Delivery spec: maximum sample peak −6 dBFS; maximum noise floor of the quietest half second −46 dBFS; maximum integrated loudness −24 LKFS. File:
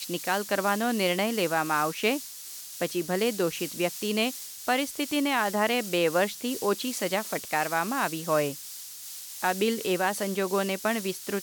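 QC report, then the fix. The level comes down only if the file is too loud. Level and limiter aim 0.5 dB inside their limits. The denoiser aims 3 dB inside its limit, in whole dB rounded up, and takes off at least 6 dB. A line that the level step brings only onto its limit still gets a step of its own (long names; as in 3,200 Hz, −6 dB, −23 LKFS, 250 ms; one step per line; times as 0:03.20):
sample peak −12.5 dBFS: in spec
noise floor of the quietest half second −42 dBFS: out of spec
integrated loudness −27.5 LKFS: in spec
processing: broadband denoise 7 dB, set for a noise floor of −42 dBFS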